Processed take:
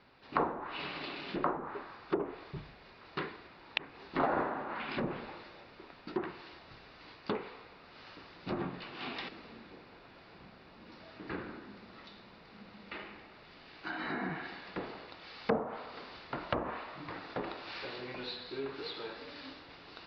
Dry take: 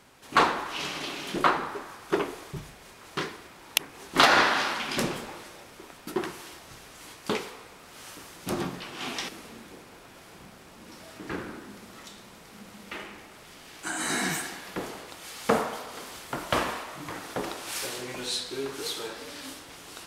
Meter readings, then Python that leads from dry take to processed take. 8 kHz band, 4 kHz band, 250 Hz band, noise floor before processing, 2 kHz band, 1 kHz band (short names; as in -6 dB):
under -35 dB, -13.0 dB, -5.5 dB, -50 dBFS, -11.5 dB, -9.5 dB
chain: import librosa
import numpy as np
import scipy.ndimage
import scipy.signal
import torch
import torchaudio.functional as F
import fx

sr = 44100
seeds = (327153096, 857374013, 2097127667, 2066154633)

y = fx.env_lowpass_down(x, sr, base_hz=780.0, full_db=-22.5)
y = scipy.signal.sosfilt(scipy.signal.butter(12, 4900.0, 'lowpass', fs=sr, output='sos'), y)
y = fx.notch(y, sr, hz=3200.0, q=12.0)
y = y * librosa.db_to_amplitude(-5.5)